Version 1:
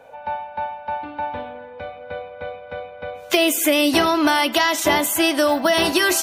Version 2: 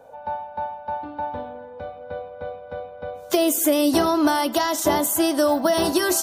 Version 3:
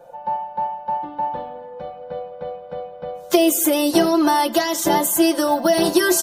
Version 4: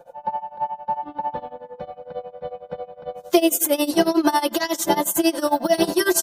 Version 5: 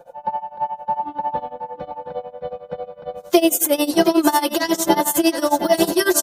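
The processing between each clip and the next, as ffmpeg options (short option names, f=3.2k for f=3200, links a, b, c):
-af "equalizer=f=2.4k:t=o:w=1.2:g=-14"
-af "aecho=1:1:5.7:0.94"
-af "tremolo=f=11:d=0.9,volume=1.5dB"
-af "aecho=1:1:721:0.335,volume=2dB"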